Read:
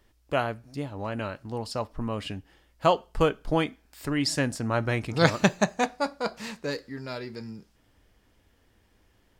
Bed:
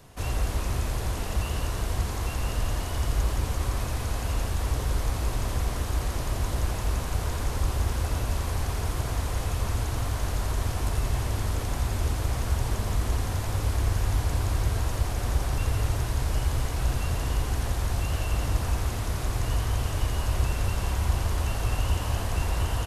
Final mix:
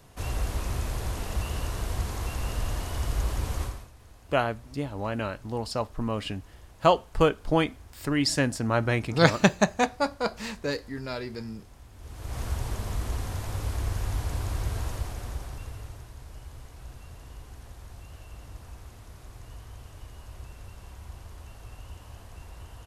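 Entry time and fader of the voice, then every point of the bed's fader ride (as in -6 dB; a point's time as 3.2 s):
4.00 s, +1.5 dB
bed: 3.63 s -2.5 dB
3.92 s -23 dB
11.93 s -23 dB
12.39 s -4.5 dB
14.88 s -4.5 dB
16.12 s -18 dB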